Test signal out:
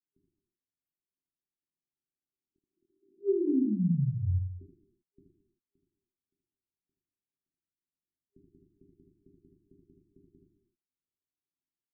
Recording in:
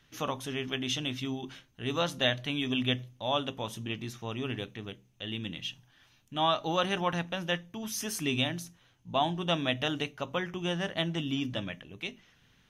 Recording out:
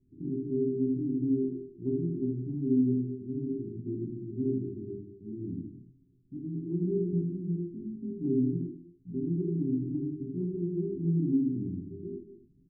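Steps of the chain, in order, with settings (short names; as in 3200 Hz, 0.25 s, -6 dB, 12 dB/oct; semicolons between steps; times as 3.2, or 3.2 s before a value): non-linear reverb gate 0.34 s falling, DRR 1 dB; treble ducked by the level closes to 520 Hz, closed at -22.5 dBFS; FFT band-reject 400–12000 Hz; low shelf 360 Hz -10 dB; in parallel at -1 dB: compressor, threshold -38 dBFS; on the sum: low-pass opened by the level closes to 430 Hz, open at -23 dBFS; early reflections 23 ms -3.5 dB, 78 ms -5 dB; gain +1.5 dB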